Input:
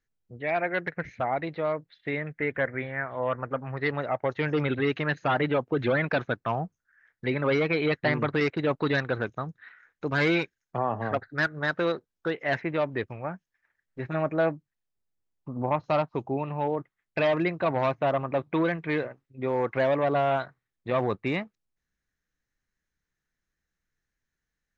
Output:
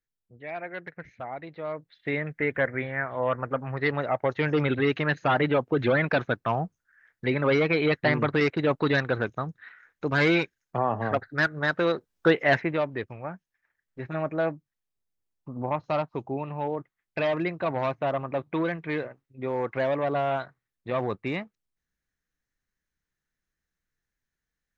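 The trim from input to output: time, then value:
1.50 s -8.5 dB
2.11 s +2 dB
11.89 s +2 dB
12.31 s +9.5 dB
12.92 s -2 dB

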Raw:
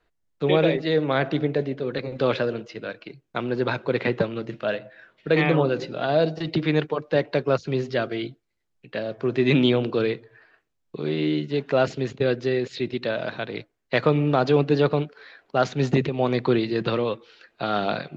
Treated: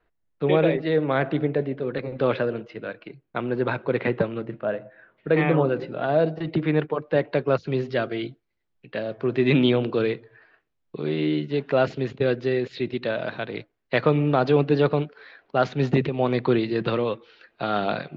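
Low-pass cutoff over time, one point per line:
4.35 s 2.6 kHz
4.65 s 1.3 kHz
5.46 s 2.2 kHz
6.80 s 2.2 kHz
7.74 s 3.9 kHz

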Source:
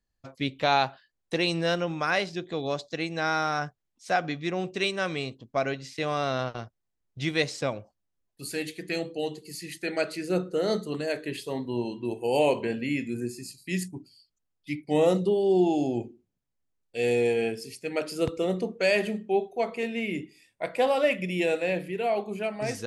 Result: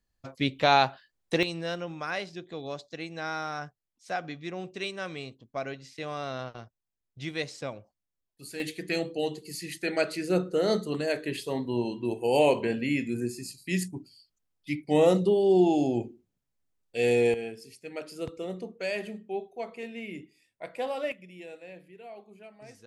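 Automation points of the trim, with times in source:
+2 dB
from 1.43 s -7 dB
from 8.60 s +1 dB
from 17.34 s -8.5 dB
from 21.12 s -18.5 dB

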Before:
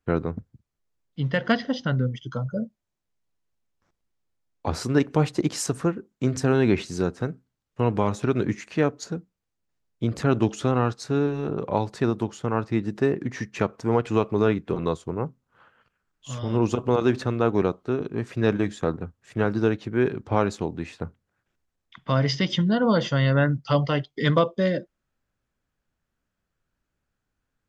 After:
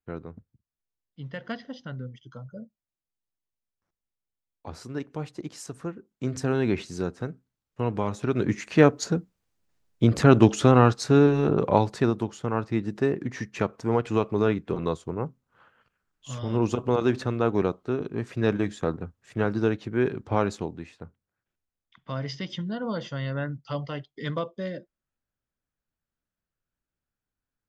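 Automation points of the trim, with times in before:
5.65 s -12.5 dB
6.36 s -4.5 dB
8.18 s -4.5 dB
8.81 s +5.5 dB
11.63 s +5.5 dB
12.25 s -2 dB
20.56 s -2 dB
20.96 s -10 dB

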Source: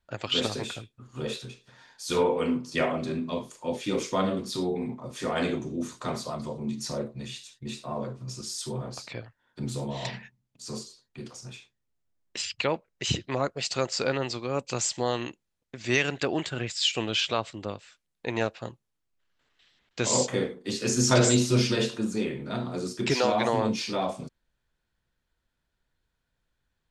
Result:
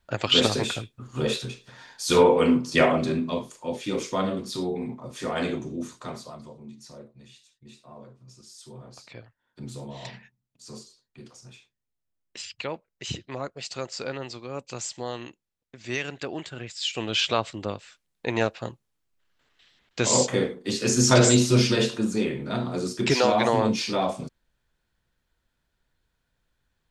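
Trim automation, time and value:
2.93 s +7 dB
3.65 s 0 dB
5.72 s 0 dB
6.79 s -13 dB
8.54 s -13 dB
9.20 s -5.5 dB
16.76 s -5.5 dB
17.25 s +3.5 dB

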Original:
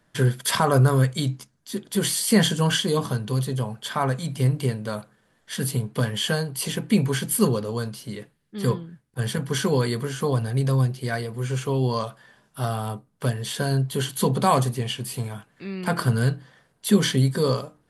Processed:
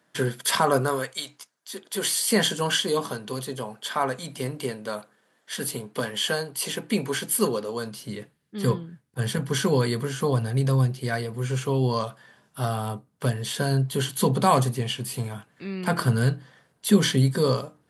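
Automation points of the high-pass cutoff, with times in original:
0.73 s 210 Hz
1.24 s 830 Hz
2.35 s 280 Hz
7.74 s 280 Hz
8.19 s 77 Hz

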